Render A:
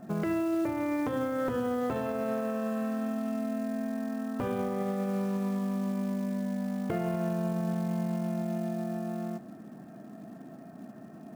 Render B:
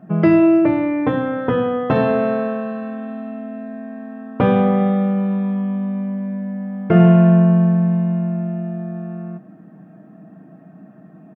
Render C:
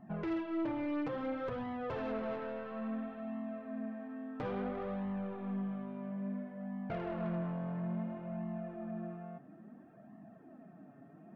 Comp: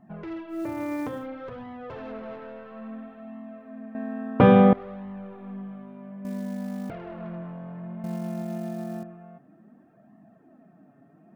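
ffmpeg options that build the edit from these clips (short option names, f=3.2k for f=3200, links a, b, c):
-filter_complex "[0:a]asplit=3[a][b][c];[2:a]asplit=5[d][e][f][g][h];[d]atrim=end=0.72[i];[a]atrim=start=0.48:end=1.28[j];[e]atrim=start=1.04:end=3.952[k];[1:a]atrim=start=3.948:end=4.732[l];[f]atrim=start=4.728:end=6.252[m];[b]atrim=start=6.248:end=6.902[n];[g]atrim=start=6.898:end=8.042[o];[c]atrim=start=8.038:end=9.032[p];[h]atrim=start=9.028[q];[i][j]acrossfade=d=0.24:c1=tri:c2=tri[r];[r][k]acrossfade=d=0.24:c1=tri:c2=tri[s];[s][l]acrossfade=d=0.004:c1=hsin:c2=hsin[t];[t][m]acrossfade=d=0.004:c1=hsin:c2=hsin[u];[u][n]acrossfade=d=0.004:c1=hsin:c2=hsin[v];[v][o]acrossfade=d=0.004:c1=hsin:c2=hsin[w];[w][p]acrossfade=d=0.004:c1=hsin:c2=hsin[x];[x][q]acrossfade=d=0.004:c1=hsin:c2=hsin"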